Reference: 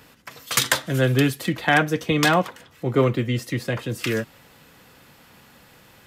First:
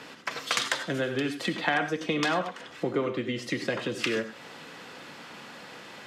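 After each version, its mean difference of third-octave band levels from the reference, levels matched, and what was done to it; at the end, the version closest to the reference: 8.5 dB: compression 6:1, threshold -32 dBFS, peak gain reduction 18 dB; band-pass 230–6000 Hz; gated-style reverb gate 120 ms rising, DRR 8.5 dB; trim +7.5 dB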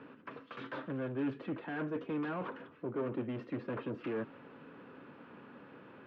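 11.5 dB: reverse; compression 5:1, threshold -27 dBFS, peak gain reduction 13 dB; reverse; saturation -34 dBFS, distortion -7 dB; cabinet simulation 180–2200 Hz, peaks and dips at 270 Hz +7 dB, 400 Hz +5 dB, 760 Hz -6 dB, 2 kHz -10 dB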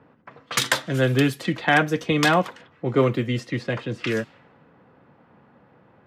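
4.0 dB: high-pass 110 Hz; treble shelf 9.1 kHz -8.5 dB; level-controlled noise filter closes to 1 kHz, open at -19 dBFS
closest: third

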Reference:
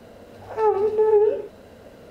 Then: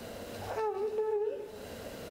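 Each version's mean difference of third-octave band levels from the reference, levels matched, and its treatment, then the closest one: 10.5 dB: treble shelf 2.5 kHz +9.5 dB; compression 3:1, threshold -37 dBFS, peak gain reduction 17.5 dB; on a send: delay 405 ms -18 dB; on the sum: trim +1 dB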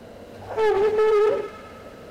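5.0 dB: hard clipper -19 dBFS, distortion -9 dB; feedback echo behind a high-pass 106 ms, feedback 76%, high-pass 1.5 kHz, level -9 dB; loudspeaker Doppler distortion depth 0.19 ms; trim +3 dB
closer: second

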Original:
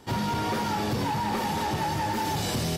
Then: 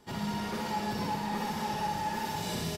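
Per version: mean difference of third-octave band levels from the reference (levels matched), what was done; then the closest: 2.5 dB: feedback comb 170 Hz, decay 0.4 s, harmonics all, mix 70%; saturation -24.5 dBFS, distortion -30 dB; comb 4.8 ms, depth 40%; on a send: flutter echo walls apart 10.8 m, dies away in 0.97 s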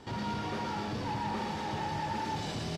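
4.0 dB: modulation noise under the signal 23 dB; peak limiter -30.5 dBFS, peak gain reduction 10.5 dB; low-pass 5.5 kHz 12 dB/octave; delay 116 ms -4 dB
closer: first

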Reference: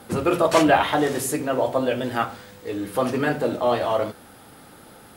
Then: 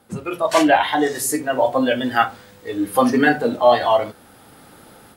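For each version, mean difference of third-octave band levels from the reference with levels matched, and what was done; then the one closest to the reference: 5.5 dB: spectral noise reduction 11 dB; level rider gain up to 12.5 dB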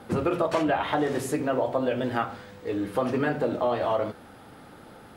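4.0 dB: low-pass 2.6 kHz 6 dB/octave; compression 6:1, threshold -21 dBFS, peak gain reduction 9 dB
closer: second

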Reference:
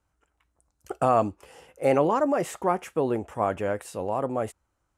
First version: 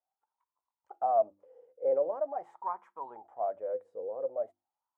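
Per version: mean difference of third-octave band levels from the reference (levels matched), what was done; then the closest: 12.5 dB: band-stop 2.7 kHz, Q 6.1; dynamic bell 1.5 kHz, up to +3 dB, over -37 dBFS, Q 1.6; hum notches 50/100/150/200/250/300/350 Hz; wah-wah 0.44 Hz 480–1000 Hz, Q 11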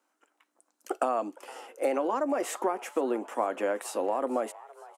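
6.5 dB: steep high-pass 240 Hz 48 dB/octave; band-stop 430 Hz, Q 12; compression 12:1, threshold -28 dBFS, peak gain reduction 12 dB; frequency-shifting echo 461 ms, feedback 50%, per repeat +150 Hz, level -20.5 dB; trim +4 dB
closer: second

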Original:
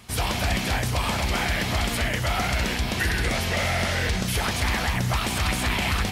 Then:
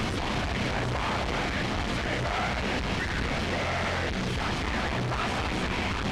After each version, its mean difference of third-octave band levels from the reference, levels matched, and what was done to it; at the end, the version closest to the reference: 5.5 dB: one-bit comparator; tilt EQ +2 dB/octave; in parallel at -11 dB: decimation with a swept rate 36×, swing 160% 0.72 Hz; on the sum: tape spacing loss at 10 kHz 31 dB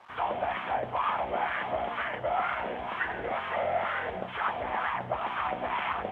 15.0 dB: elliptic low-pass 3.3 kHz, stop band 40 dB; word length cut 8-bit, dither none; wah-wah 2.1 Hz 590–1200 Hz, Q 2.6; trim +4.5 dB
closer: first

